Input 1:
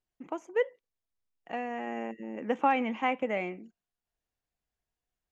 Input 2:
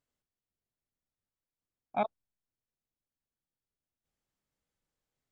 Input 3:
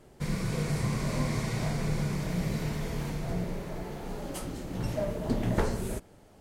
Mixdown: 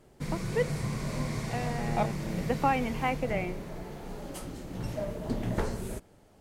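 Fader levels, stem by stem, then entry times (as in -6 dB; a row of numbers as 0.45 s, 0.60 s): -1.0 dB, +0.5 dB, -3.0 dB; 0.00 s, 0.00 s, 0.00 s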